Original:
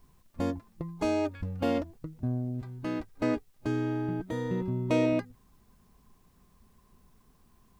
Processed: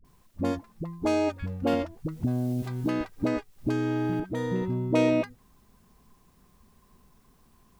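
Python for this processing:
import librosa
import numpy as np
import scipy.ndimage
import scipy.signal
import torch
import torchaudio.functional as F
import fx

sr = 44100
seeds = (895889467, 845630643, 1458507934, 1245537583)

y = fx.low_shelf(x, sr, hz=160.0, db=-3.0)
y = fx.dispersion(y, sr, late='highs', ms=47.0, hz=440.0)
y = fx.band_squash(y, sr, depth_pct=100, at=(1.73, 4.2))
y = y * librosa.db_to_amplitude(3.5)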